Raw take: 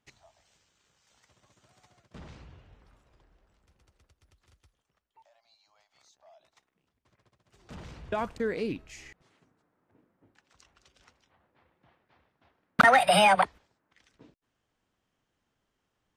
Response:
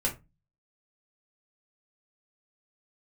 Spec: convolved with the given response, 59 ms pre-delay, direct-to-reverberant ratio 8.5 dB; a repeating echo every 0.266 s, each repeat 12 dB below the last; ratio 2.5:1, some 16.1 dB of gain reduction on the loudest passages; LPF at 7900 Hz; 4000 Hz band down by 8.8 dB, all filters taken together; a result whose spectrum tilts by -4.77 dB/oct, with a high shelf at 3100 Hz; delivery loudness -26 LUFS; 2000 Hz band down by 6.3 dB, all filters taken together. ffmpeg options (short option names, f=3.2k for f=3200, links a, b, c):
-filter_complex "[0:a]lowpass=7.9k,equalizer=f=2k:t=o:g=-5,highshelf=f=3.1k:g=-5,equalizer=f=4k:t=o:g=-6.5,acompressor=threshold=-43dB:ratio=2.5,aecho=1:1:266|532|798:0.251|0.0628|0.0157,asplit=2[a][b];[1:a]atrim=start_sample=2205,adelay=59[c];[b][c]afir=irnorm=-1:irlink=0,volume=-15dB[d];[a][d]amix=inputs=2:normalize=0,volume=16.5dB"